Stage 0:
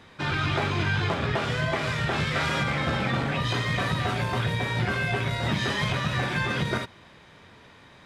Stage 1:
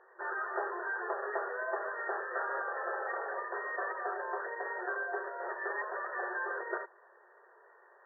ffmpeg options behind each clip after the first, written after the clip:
ffmpeg -i in.wav -af "afftfilt=real='re*between(b*sr/4096,350,1900)':imag='im*between(b*sr/4096,350,1900)':win_size=4096:overlap=0.75,volume=-6dB" out.wav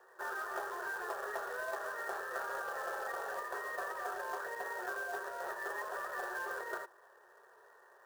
ffmpeg -i in.wav -filter_complex "[0:a]acrossover=split=360|740|1600[link_01][link_02][link_03][link_04];[link_01]acompressor=threshold=-59dB:ratio=4[link_05];[link_02]acompressor=threshold=-43dB:ratio=4[link_06];[link_03]acompressor=threshold=-41dB:ratio=4[link_07];[link_04]acompressor=threshold=-47dB:ratio=4[link_08];[link_05][link_06][link_07][link_08]amix=inputs=4:normalize=0,bandreject=frequency=50:width_type=h:width=6,bandreject=frequency=100:width_type=h:width=6,bandreject=frequency=150:width_type=h:width=6,bandreject=frequency=200:width_type=h:width=6,bandreject=frequency=250:width_type=h:width=6,bandreject=frequency=300:width_type=h:width=6,bandreject=frequency=350:width_type=h:width=6,acrusher=bits=3:mode=log:mix=0:aa=0.000001,volume=-1dB" out.wav

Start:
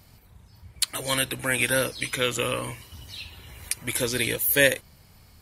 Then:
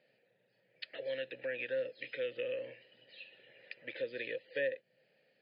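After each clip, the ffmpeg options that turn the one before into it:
ffmpeg -i in.wav -filter_complex "[0:a]afftfilt=real='re*between(b*sr/4096,110,5100)':imag='im*between(b*sr/4096,110,5100)':win_size=4096:overlap=0.75,asplit=3[link_01][link_02][link_03];[link_01]bandpass=frequency=530:width_type=q:width=8,volume=0dB[link_04];[link_02]bandpass=frequency=1840:width_type=q:width=8,volume=-6dB[link_05];[link_03]bandpass=frequency=2480:width_type=q:width=8,volume=-9dB[link_06];[link_04][link_05][link_06]amix=inputs=3:normalize=0,acrossover=split=270[link_07][link_08];[link_08]acompressor=threshold=-40dB:ratio=2.5[link_09];[link_07][link_09]amix=inputs=2:normalize=0,volume=1dB" out.wav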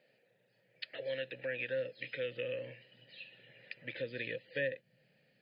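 ffmpeg -i in.wav -af "asubboost=boost=6.5:cutoff=170,volume=1.5dB" out.wav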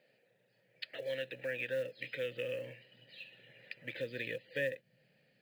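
ffmpeg -i in.wav -af "acrusher=bits=7:mode=log:mix=0:aa=0.000001" out.wav

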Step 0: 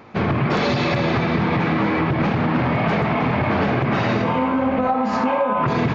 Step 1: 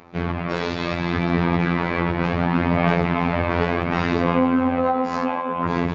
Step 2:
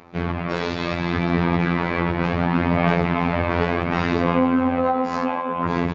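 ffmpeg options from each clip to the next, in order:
ffmpeg -i in.wav -af "afftfilt=real='hypot(re,im)*cos(PI*b)':imag='0':win_size=2048:overlap=0.75,dynaudnorm=framelen=420:gausssize=7:maxgain=13.5dB,aphaser=in_gain=1:out_gain=1:delay=2.1:decay=0.25:speed=0.69:type=sinusoidal,volume=-2dB" out.wav
ffmpeg -i in.wav -af "aresample=32000,aresample=44100" out.wav

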